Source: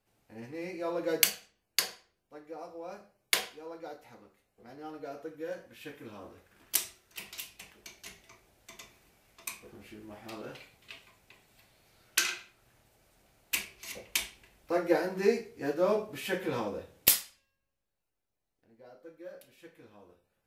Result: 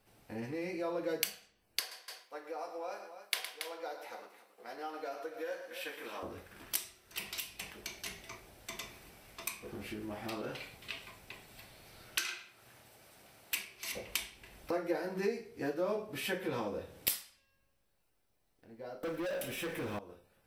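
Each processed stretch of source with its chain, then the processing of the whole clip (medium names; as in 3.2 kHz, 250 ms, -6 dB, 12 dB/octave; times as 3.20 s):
1.80–6.23 s: high-pass 580 Hz + multi-tap echo 113/279 ms -12/-14.5 dB
12.21–13.93 s: high-pass 80 Hz + bass shelf 440 Hz -5 dB
19.03–19.99 s: peaking EQ 4.4 kHz -13.5 dB 0.25 oct + waveshaping leveller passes 5
whole clip: compression 2.5:1, threshold -48 dBFS; band-stop 6.8 kHz, Q 8.2; trim +8.5 dB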